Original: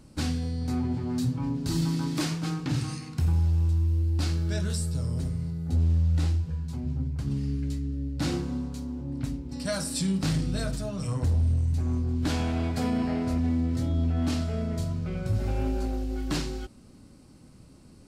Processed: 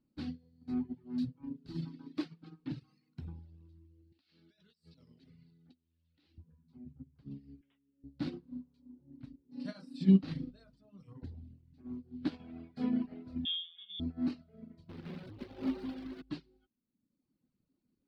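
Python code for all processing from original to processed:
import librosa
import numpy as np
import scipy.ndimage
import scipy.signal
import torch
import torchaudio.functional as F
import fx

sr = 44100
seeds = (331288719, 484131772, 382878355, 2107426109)

y = fx.chain(x, sr, fx.weighting(curve='D'),
    fx.over_compress(threshold_db=-35.0, ratio=-0.5), at=(4.12, 6.38))
y = fx.chain(y, sr, fx.highpass(hz=570.0, slope=6),
    fx.resample_bad(factor=6, down='none', up='filtered'), at=(7.61, 8.04))
y = fx.chain(y, sr, fx.highpass(hz=74.0, slope=12),
    fx.high_shelf(hz=7900.0, db=-3.0),
    fx.doubler(ms=36.0, db=-2.5), at=(9.45, 10.51))
y = fx.chain(y, sr, fx.doubler(ms=16.0, db=-4.5),
    fx.freq_invert(carrier_hz=3500), at=(13.45, 14.0))
y = fx.chain(y, sr, fx.highpass(hz=67.0, slope=24),
    fx.quant_companded(bits=2), at=(14.89, 16.22))
y = fx.dereverb_blind(y, sr, rt60_s=1.3)
y = fx.curve_eq(y, sr, hz=(100.0, 250.0, 650.0, 4400.0, 6800.0), db=(0, 12, 2, 4, -16))
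y = fx.upward_expand(y, sr, threshold_db=-30.0, expansion=2.5)
y = y * 10.0 ** (-6.0 / 20.0)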